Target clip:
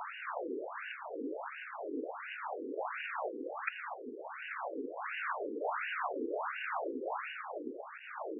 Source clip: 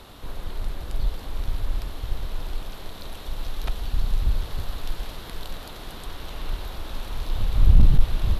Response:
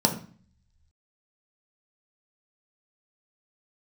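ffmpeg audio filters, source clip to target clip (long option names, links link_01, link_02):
-af "acompressor=threshold=-29dB:ratio=2.5,afftfilt=real='re*between(b*sr/1024,340*pow(2100/340,0.5+0.5*sin(2*PI*1.4*pts/sr))/1.41,340*pow(2100/340,0.5+0.5*sin(2*PI*1.4*pts/sr))*1.41)':imag='im*between(b*sr/1024,340*pow(2100/340,0.5+0.5*sin(2*PI*1.4*pts/sr))/1.41,340*pow(2100/340,0.5+0.5*sin(2*PI*1.4*pts/sr))*1.41)':win_size=1024:overlap=0.75,volume=13dB"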